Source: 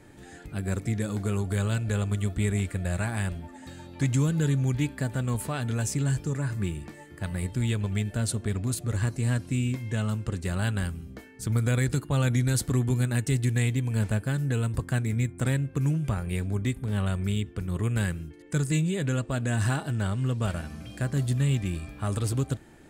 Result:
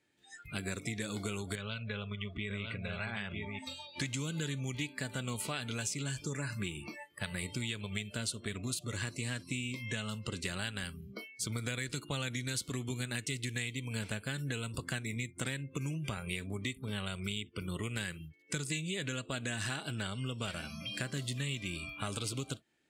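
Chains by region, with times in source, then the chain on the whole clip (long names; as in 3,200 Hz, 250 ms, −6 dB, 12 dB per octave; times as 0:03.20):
0:01.55–0:03.59: low-pass filter 4,200 Hz + downward compressor 2.5 to 1, threshold −33 dBFS + single-tap delay 952 ms −5 dB
whole clip: meter weighting curve D; noise reduction from a noise print of the clip's start 25 dB; downward compressor 6 to 1, threshold −34 dBFS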